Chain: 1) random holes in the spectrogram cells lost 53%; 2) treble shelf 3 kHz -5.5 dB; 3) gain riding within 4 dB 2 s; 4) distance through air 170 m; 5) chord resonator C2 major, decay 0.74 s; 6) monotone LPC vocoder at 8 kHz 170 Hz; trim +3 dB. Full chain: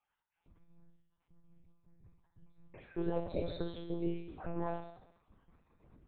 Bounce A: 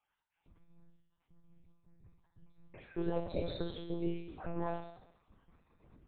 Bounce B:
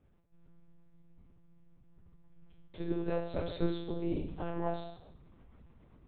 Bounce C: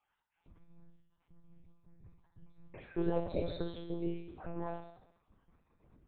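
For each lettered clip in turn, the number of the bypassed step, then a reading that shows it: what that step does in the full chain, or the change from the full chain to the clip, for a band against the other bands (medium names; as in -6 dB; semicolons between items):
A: 2, 4 kHz band +3.0 dB; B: 1, loudness change +2.5 LU; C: 3, momentary loudness spread change +9 LU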